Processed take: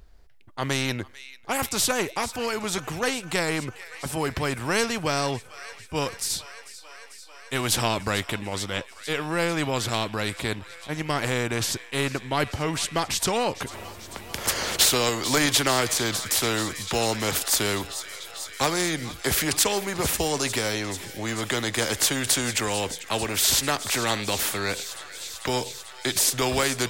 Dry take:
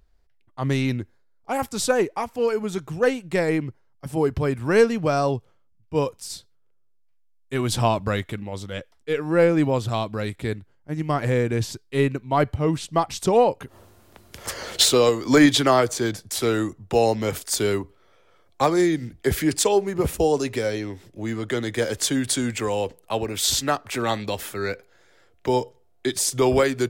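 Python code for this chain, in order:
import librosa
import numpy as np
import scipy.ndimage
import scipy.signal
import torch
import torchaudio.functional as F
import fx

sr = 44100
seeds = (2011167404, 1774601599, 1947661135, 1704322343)

y = fx.echo_wet_highpass(x, sr, ms=444, feedback_pct=80, hz=1900.0, wet_db=-20.0)
y = fx.spectral_comp(y, sr, ratio=2.0)
y = F.gain(torch.from_numpy(y), -1.0).numpy()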